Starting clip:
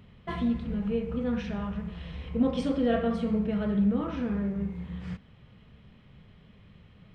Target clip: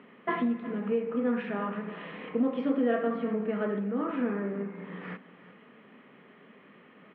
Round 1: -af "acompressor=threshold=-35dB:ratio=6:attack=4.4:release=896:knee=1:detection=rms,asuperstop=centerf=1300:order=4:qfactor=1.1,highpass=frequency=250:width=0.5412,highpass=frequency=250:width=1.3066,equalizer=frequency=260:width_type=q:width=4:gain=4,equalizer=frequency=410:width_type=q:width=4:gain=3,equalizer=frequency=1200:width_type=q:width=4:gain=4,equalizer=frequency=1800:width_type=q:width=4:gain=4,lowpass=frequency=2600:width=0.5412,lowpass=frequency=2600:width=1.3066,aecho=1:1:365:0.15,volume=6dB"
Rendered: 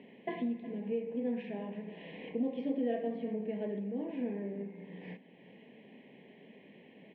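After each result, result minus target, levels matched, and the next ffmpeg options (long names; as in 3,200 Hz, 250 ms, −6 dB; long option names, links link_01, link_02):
downward compressor: peak gain reduction +6 dB; 1,000 Hz band −5.0 dB
-af "acompressor=threshold=-27.5dB:ratio=6:attack=4.4:release=896:knee=1:detection=rms,asuperstop=centerf=1300:order=4:qfactor=1.1,highpass=frequency=250:width=0.5412,highpass=frequency=250:width=1.3066,equalizer=frequency=260:width_type=q:width=4:gain=4,equalizer=frequency=410:width_type=q:width=4:gain=3,equalizer=frequency=1200:width_type=q:width=4:gain=4,equalizer=frequency=1800:width_type=q:width=4:gain=4,lowpass=frequency=2600:width=0.5412,lowpass=frequency=2600:width=1.3066,aecho=1:1:365:0.15,volume=6dB"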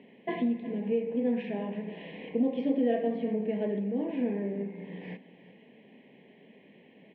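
1,000 Hz band −6.0 dB
-af "acompressor=threshold=-27.5dB:ratio=6:attack=4.4:release=896:knee=1:detection=rms,highpass=frequency=250:width=0.5412,highpass=frequency=250:width=1.3066,equalizer=frequency=260:width_type=q:width=4:gain=4,equalizer=frequency=410:width_type=q:width=4:gain=3,equalizer=frequency=1200:width_type=q:width=4:gain=4,equalizer=frequency=1800:width_type=q:width=4:gain=4,lowpass=frequency=2600:width=0.5412,lowpass=frequency=2600:width=1.3066,aecho=1:1:365:0.15,volume=6dB"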